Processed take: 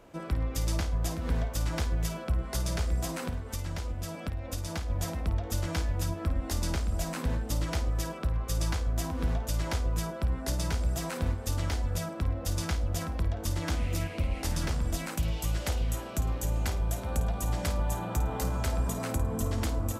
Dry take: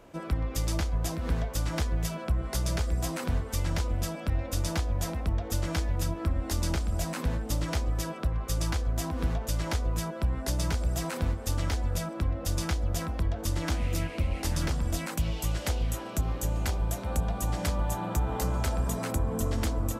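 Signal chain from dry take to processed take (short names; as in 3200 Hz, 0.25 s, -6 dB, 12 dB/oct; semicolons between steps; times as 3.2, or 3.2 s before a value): 3.17–4.9 compressor, threshold -29 dBFS, peak gain reduction 7 dB; on a send: flutter echo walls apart 9.1 m, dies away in 0.28 s; on the sum: gain -1.5 dB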